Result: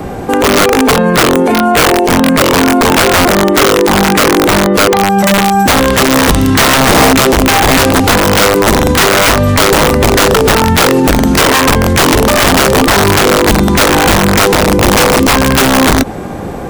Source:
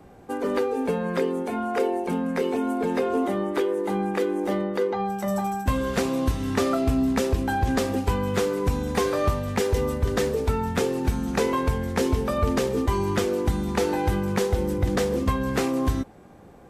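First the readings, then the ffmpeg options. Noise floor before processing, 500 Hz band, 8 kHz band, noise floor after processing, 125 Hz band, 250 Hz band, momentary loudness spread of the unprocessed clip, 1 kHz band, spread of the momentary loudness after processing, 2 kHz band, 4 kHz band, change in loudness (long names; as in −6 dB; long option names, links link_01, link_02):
−48 dBFS, +15.0 dB, +25.0 dB, −20 dBFS, +14.0 dB, +15.5 dB, 3 LU, +19.5 dB, 1 LU, +23.5 dB, +26.0 dB, +17.5 dB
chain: -filter_complex "[0:a]acrossover=split=3400[link_01][link_02];[link_02]acompressor=threshold=-45dB:ratio=4:attack=1:release=60[link_03];[link_01][link_03]amix=inputs=2:normalize=0,aeval=exprs='(mod(8.91*val(0)+1,2)-1)/8.91':channel_layout=same,alimiter=level_in=29dB:limit=-1dB:release=50:level=0:latency=1,volume=-1dB"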